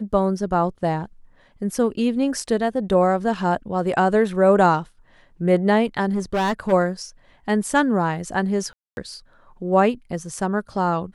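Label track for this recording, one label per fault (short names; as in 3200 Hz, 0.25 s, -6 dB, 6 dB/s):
6.090000	6.730000	clipped -18 dBFS
8.730000	8.970000	gap 0.241 s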